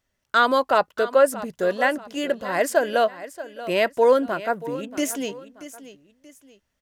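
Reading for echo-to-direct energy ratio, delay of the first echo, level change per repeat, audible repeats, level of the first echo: -14.5 dB, 632 ms, -9.0 dB, 2, -15.0 dB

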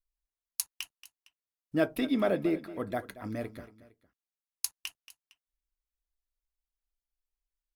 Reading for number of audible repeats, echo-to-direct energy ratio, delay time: 2, -15.5 dB, 229 ms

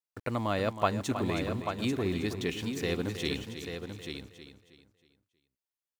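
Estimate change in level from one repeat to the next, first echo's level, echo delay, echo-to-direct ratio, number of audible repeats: no regular repeats, -10.5 dB, 318 ms, -5.0 dB, 6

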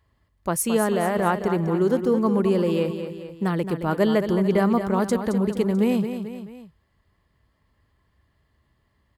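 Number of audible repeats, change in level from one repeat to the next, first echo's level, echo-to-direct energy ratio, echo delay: 3, -5.5 dB, -9.0 dB, -7.5 dB, 219 ms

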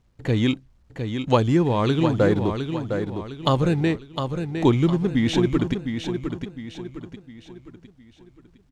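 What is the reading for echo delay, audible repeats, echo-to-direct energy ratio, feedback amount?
708 ms, 4, -6.0 dB, 41%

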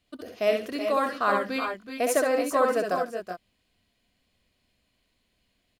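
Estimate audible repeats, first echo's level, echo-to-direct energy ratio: 3, -5.0 dB, -1.5 dB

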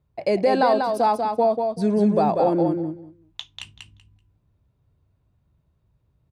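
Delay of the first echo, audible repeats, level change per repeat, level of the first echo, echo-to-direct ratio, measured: 191 ms, 2, -15.5 dB, -5.0 dB, -5.0 dB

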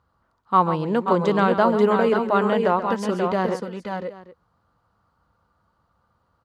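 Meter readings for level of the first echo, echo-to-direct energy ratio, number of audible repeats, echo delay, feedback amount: -11.5 dB, -4.0 dB, 3, 135 ms, no regular repeats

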